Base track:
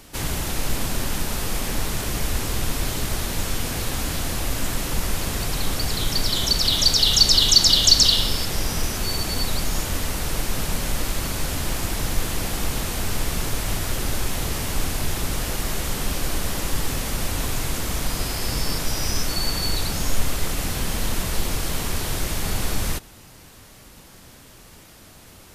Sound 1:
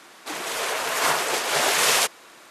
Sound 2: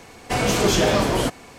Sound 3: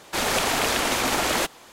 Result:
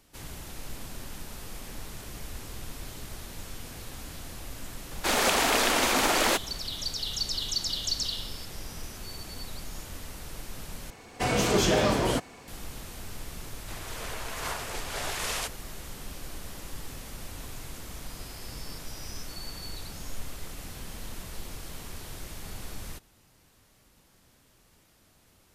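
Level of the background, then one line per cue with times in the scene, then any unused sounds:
base track -15.5 dB
4.91 s: add 3 -1 dB + steep high-pass 180 Hz
10.90 s: replace with 2 -5 dB
13.41 s: add 1 -13 dB

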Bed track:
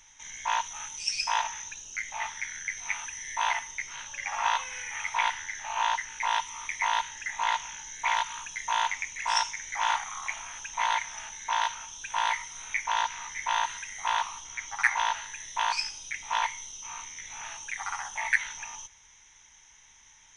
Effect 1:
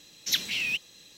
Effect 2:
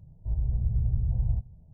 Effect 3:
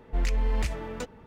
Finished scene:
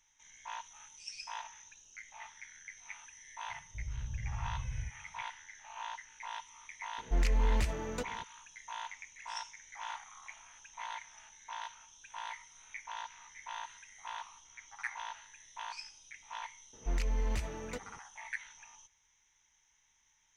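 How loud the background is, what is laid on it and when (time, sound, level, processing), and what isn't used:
bed track -15.5 dB
3.49 s: add 2 -12.5 dB
6.98 s: add 3 -2.5 dB
16.73 s: add 3 -6.5 dB
not used: 1

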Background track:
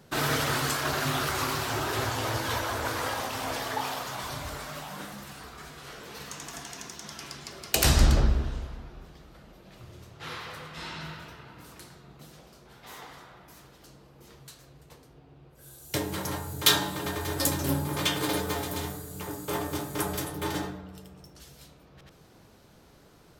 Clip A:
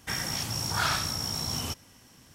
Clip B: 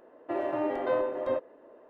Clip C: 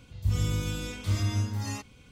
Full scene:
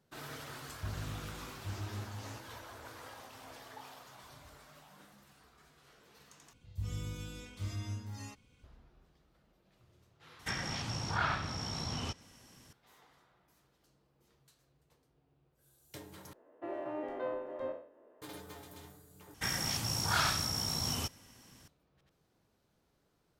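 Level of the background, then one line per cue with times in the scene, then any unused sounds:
background track -19 dB
0.58 s: add C -14 dB + loudspeaker Doppler distortion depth 0.64 ms
6.53 s: replace with C -12 dB
10.39 s: add A -3.5 dB + low-pass that closes with the level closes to 2.4 kHz, closed at -25 dBFS
16.33 s: replace with B -10.5 dB + spectral sustain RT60 0.48 s
19.34 s: replace with A -3 dB

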